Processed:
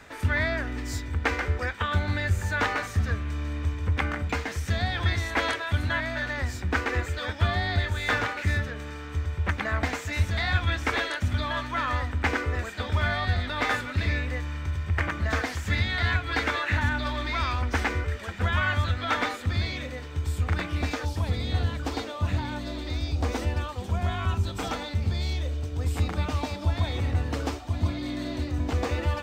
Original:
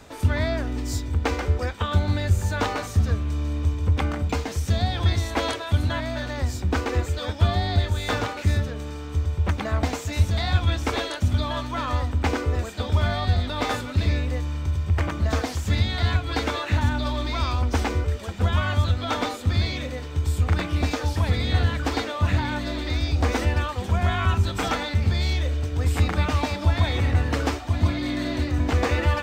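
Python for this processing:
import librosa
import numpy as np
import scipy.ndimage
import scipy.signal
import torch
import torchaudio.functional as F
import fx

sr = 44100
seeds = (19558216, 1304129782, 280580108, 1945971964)

y = fx.peak_eq(x, sr, hz=1800.0, db=fx.steps((0.0, 11.5), (19.46, 5.0), (21.05, -3.5)), octaves=1.1)
y = y * librosa.db_to_amplitude(-5.0)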